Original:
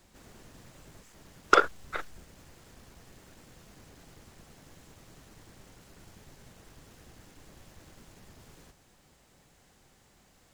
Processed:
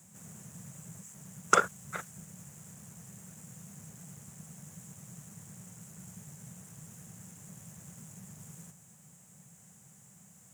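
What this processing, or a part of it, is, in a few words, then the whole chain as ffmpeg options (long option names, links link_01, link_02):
budget condenser microphone: -af "highpass=frequency=110:width=0.5412,highpass=frequency=110:width=1.3066,lowshelf=frequency=230:width_type=q:width=3:gain=8,highshelf=frequency=5700:width_type=q:width=3:gain=9,volume=-2.5dB"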